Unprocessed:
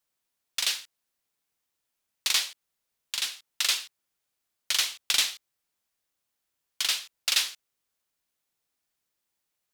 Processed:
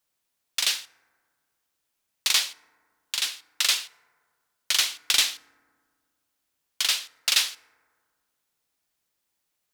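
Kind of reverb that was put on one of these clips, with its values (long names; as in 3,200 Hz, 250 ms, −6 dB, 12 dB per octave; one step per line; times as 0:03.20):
feedback delay network reverb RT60 1.8 s, low-frequency decay 1.25×, high-frequency decay 0.3×, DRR 18 dB
level +3 dB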